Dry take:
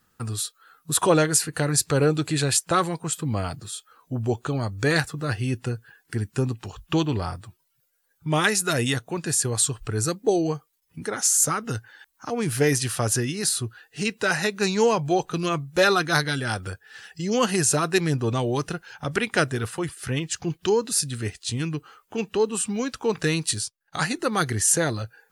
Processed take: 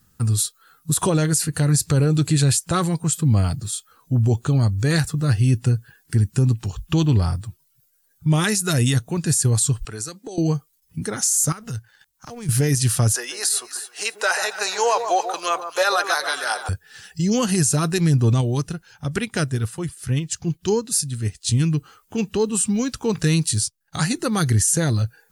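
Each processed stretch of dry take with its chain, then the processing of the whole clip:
0:09.85–0:10.38: meter weighting curve A + downward compressor 10 to 1, threshold −31 dBFS
0:11.52–0:12.49: mu-law and A-law mismatch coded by A + parametric band 280 Hz −10 dB 0.75 octaves + downward compressor 10 to 1, threshold −33 dBFS
0:13.15–0:16.69: high-pass filter 530 Hz 24 dB per octave + parametric band 880 Hz +8 dB 2 octaves + delay that swaps between a low-pass and a high-pass 139 ms, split 1,400 Hz, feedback 55%, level −9 dB
0:18.41–0:21.44: de-essing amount 25% + expander for the loud parts, over −31 dBFS
whole clip: bass and treble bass +13 dB, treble +9 dB; brickwall limiter −9 dBFS; level −1 dB

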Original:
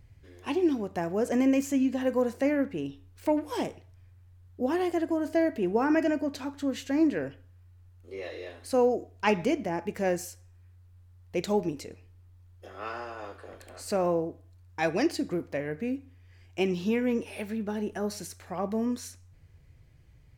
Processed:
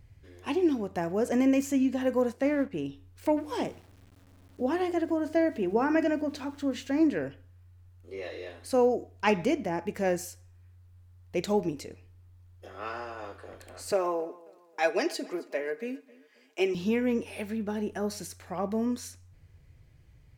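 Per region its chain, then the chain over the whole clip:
0:02.32–0:02.73: mu-law and A-law mismatch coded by A + high-shelf EQ 8,600 Hz −9 dB
0:03.35–0:07.01: high-shelf EQ 11,000 Hz −11 dB + mains-hum notches 60/120/180/240/300/360 Hz + centre clipping without the shift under −53.5 dBFS
0:13.92–0:16.75: high-pass filter 310 Hz 24 dB per octave + comb filter 4.8 ms, depth 55% + repeating echo 269 ms, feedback 37%, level −22 dB
whole clip: no processing

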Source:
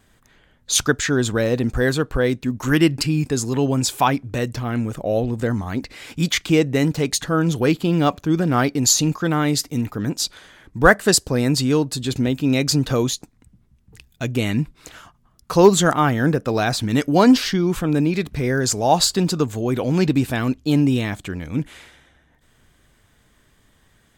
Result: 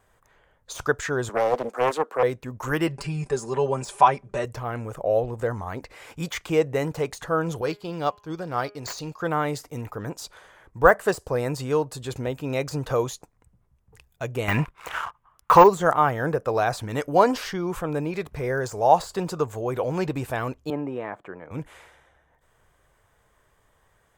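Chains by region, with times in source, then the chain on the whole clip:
0:01.29–0:02.23: Butterworth high-pass 200 Hz 72 dB per octave + highs frequency-modulated by the lows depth 0.59 ms
0:02.87–0:04.45: elliptic low-pass filter 10,000 Hz, stop band 50 dB + comb filter 5.1 ms, depth 84%
0:07.61–0:09.19: parametric band 4,500 Hz +12.5 dB 0.7 octaves + hum removal 206.6 Hz, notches 16 + expander for the loud parts, over −30 dBFS
0:14.48–0:15.64: flat-topped bell 1,700 Hz +11 dB 2.3 octaves + leveller curve on the samples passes 2
0:20.70–0:21.51: running median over 3 samples + three-way crossover with the lows and the highs turned down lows −23 dB, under 180 Hz, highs −23 dB, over 2,100 Hz
whole clip: de-essing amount 45%; octave-band graphic EQ 250/500/1,000/4,000 Hz −10/+7/+7/−6 dB; level −6.5 dB

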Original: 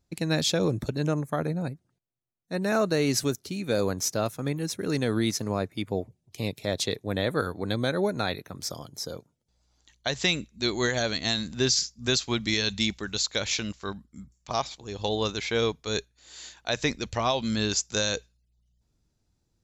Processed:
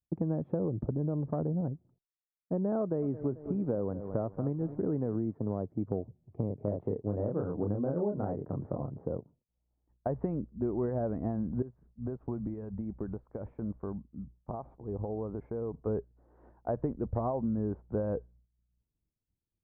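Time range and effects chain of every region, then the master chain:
0:00.90–0:01.61: high-frequency loss of the air 380 metres + envelope flattener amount 50%
0:02.80–0:05.16: high-shelf EQ 2,000 Hz +10 dB + feedback echo at a low word length 219 ms, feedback 55%, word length 6 bits, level −14.5 dB
0:06.47–0:09.06: high-shelf EQ 3,800 Hz −9.5 dB + double-tracking delay 29 ms −2 dB
0:11.62–0:15.74: amplitude tremolo 1.4 Hz, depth 43% + downward compressor 8 to 1, threshold −35 dBFS
whole clip: Bessel low-pass filter 610 Hz, order 6; downward expander −59 dBFS; downward compressor 10 to 1, threshold −34 dBFS; level +6 dB

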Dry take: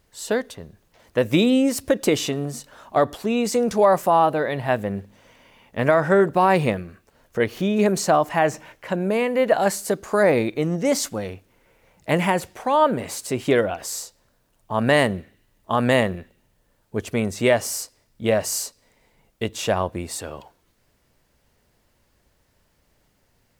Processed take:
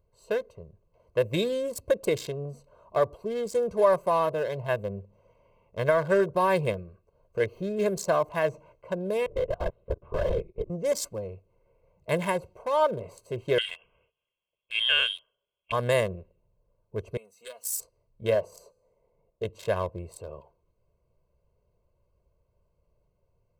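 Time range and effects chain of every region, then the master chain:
0:09.26–0:10.70: high-pass filter 110 Hz 24 dB per octave + output level in coarse steps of 21 dB + linear-prediction vocoder at 8 kHz whisper
0:13.58–0:15.72: one scale factor per block 5 bits + high-shelf EQ 2,600 Hz −9 dB + voice inversion scrambler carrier 3,400 Hz
0:17.17–0:17.80: first difference + mains-hum notches 60/120/180/240/300/360 Hz + comb filter 4.2 ms, depth 80%
0:18.35–0:19.45: parametric band 520 Hz +8.5 dB 2.5 octaves + tuned comb filter 170 Hz, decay 1 s, harmonics odd, mix 50%
whole clip: adaptive Wiener filter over 25 samples; high-shelf EQ 9,200 Hz +9.5 dB; comb filter 1.9 ms, depth 80%; level −8 dB

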